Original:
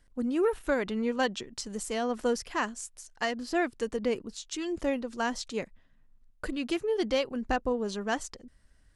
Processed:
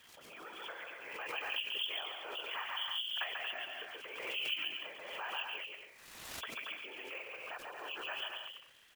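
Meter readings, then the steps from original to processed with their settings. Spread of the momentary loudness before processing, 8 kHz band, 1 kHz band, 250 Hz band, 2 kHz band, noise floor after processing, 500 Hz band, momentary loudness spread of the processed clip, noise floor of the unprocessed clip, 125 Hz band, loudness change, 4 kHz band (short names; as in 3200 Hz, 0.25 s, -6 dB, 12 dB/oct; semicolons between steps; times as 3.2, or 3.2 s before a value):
10 LU, -15.5 dB, -10.5 dB, -29.5 dB, -4.0 dB, -59 dBFS, -20.0 dB, 11 LU, -62 dBFS, under -20 dB, -8.5 dB, +3.0 dB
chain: nonlinear frequency compression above 2300 Hz 4:1; compressor 10:1, threshold -41 dBFS, peak gain reduction 19 dB; Bessel high-pass 1100 Hz, order 4; crackle 410/s -60 dBFS; whisperiser; bouncing-ball echo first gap 0.14 s, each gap 0.65×, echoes 5; careless resampling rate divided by 2×, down none, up hold; backwards sustainer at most 38 dB/s; gain +6 dB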